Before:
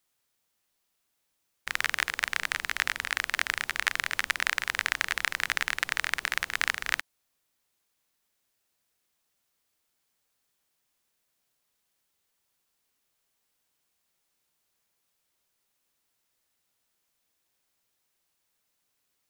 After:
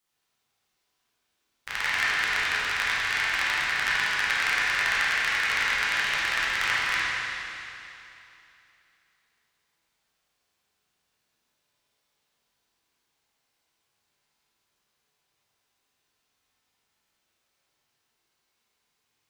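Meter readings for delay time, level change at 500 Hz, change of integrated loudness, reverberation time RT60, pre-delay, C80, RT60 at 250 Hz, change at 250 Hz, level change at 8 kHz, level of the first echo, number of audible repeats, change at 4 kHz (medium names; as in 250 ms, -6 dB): no echo, +4.5 dB, +4.5 dB, 2.9 s, 9 ms, -2.5 dB, 2.9 s, +4.5 dB, +0.5 dB, no echo, no echo, +4.5 dB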